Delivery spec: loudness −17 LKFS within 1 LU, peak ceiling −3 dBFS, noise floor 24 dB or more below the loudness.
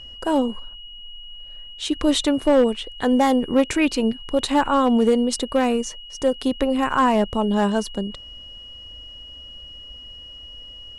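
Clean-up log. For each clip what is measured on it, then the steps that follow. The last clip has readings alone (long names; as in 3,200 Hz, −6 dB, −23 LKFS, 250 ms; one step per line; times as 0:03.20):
share of clipped samples 0.9%; peaks flattened at −10.0 dBFS; interfering tone 2,900 Hz; level of the tone −38 dBFS; integrated loudness −21.0 LKFS; sample peak −10.0 dBFS; target loudness −17.0 LKFS
→ clipped peaks rebuilt −10 dBFS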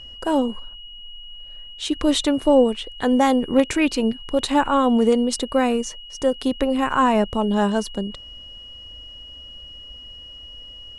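share of clipped samples 0.0%; interfering tone 2,900 Hz; level of the tone −38 dBFS
→ notch filter 2,900 Hz, Q 30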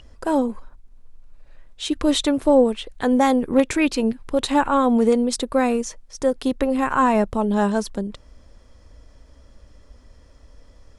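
interfering tone none found; integrated loudness −20.5 LKFS; sample peak −5.0 dBFS; target loudness −17.0 LKFS
→ level +3.5 dB
brickwall limiter −3 dBFS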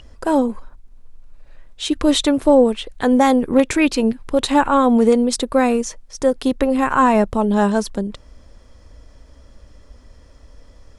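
integrated loudness −17.0 LKFS; sample peak −3.0 dBFS; background noise floor −47 dBFS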